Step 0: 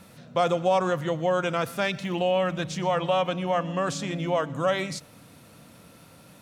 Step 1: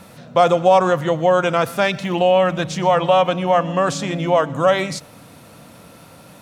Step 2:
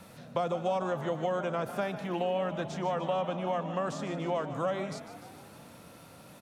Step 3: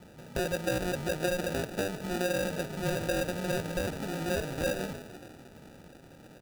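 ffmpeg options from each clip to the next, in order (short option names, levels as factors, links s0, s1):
-af "equalizer=f=780:t=o:w=1.5:g=4,volume=2.11"
-filter_complex "[0:a]acrossover=split=340|1400[s0][s1][s2];[s0]acompressor=threshold=0.0355:ratio=4[s3];[s1]acompressor=threshold=0.0708:ratio=4[s4];[s2]acompressor=threshold=0.0126:ratio=4[s5];[s3][s4][s5]amix=inputs=3:normalize=0,asplit=2[s6][s7];[s7]asplit=7[s8][s9][s10][s11][s12][s13][s14];[s8]adelay=149,afreqshift=49,volume=0.237[s15];[s9]adelay=298,afreqshift=98,volume=0.146[s16];[s10]adelay=447,afreqshift=147,volume=0.0912[s17];[s11]adelay=596,afreqshift=196,volume=0.0562[s18];[s12]adelay=745,afreqshift=245,volume=0.0351[s19];[s13]adelay=894,afreqshift=294,volume=0.0216[s20];[s14]adelay=1043,afreqshift=343,volume=0.0135[s21];[s15][s16][s17][s18][s19][s20][s21]amix=inputs=7:normalize=0[s22];[s6][s22]amix=inputs=2:normalize=0,volume=0.376"
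-af "acrusher=samples=41:mix=1:aa=0.000001"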